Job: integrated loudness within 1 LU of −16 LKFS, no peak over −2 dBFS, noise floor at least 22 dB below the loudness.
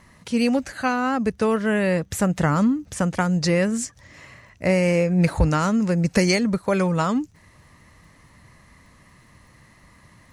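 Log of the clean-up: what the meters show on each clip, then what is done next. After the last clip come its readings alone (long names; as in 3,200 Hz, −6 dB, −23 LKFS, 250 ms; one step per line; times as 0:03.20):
crackle rate 32 per second; integrated loudness −21.5 LKFS; sample peak −6.0 dBFS; target loudness −16.0 LKFS
→ click removal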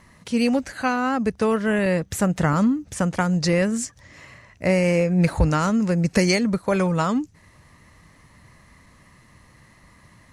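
crackle rate 0.097 per second; integrated loudness −21.5 LKFS; sample peak −6.5 dBFS; target loudness −16.0 LKFS
→ level +5.5 dB
brickwall limiter −2 dBFS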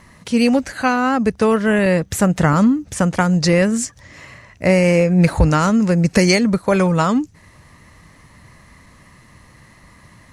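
integrated loudness −16.5 LKFS; sample peak −2.0 dBFS; background noise floor −48 dBFS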